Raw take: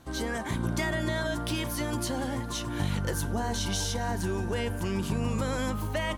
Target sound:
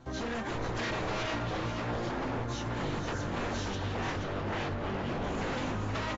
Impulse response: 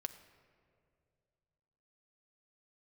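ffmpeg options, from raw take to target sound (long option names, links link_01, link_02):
-filter_complex "[0:a]asettb=1/sr,asplit=3[link_01][link_02][link_03];[link_01]atrim=end=1.304[link_04];[link_02]atrim=start=1.3:end=2.49,asetpts=PTS-STARTPTS,afade=type=in:duration=0.004:curve=qsin,afade=type=out:start_time=1.186:duration=0.004:curve=qsin,aemphasis=mode=reproduction:type=75kf[link_05];[link_03]atrim=start=2.486[link_06];[link_04][link_05]acrossfade=duration=0.004:curve1=hsin:curve2=qsin[link_07];[link_07][link_06]acrossfade=duration=0.004:curve1=qsin:curve2=hsin,asettb=1/sr,asplit=3[link_08][link_09][link_10];[link_08]atrim=end=3.754[link_11];[link_09]atrim=start=3.75:end=5.24,asetpts=PTS-STARTPTS,afade=type=in:duration=0.004:curve=qsin,afade=type=out:start_time=1.486:duration=0.004:curve=qsin,lowpass=frequency=3200:width=0.5412,lowpass=frequency=3200:width=1.3066[link_12];[link_10]atrim=start=5.236[link_13];[link_11][link_12]acrossfade=duration=0.004:curve1=hsin:curve2=qsin[link_14];[link_14][link_13]acrossfade=duration=0.004:curve1=qsin:curve2=hsin,acrossover=split=1900[link_15][link_16];[link_15]acontrast=38[link_17];[link_16]asoftclip=type=tanh:threshold=-34.5dB[link_18];[link_17][link_18]amix=inputs=2:normalize=0,flanger=delay=8:depth=1.4:regen=35:speed=0.37:shape=sinusoidal,aeval=exprs='0.0355*(abs(mod(val(0)/0.0355+3,4)-2)-1)':channel_layout=same,aecho=1:1:482|964|1446:0.447|0.0804|0.0145,volume=-1dB" -ar 16000 -c:a aac -b:a 24k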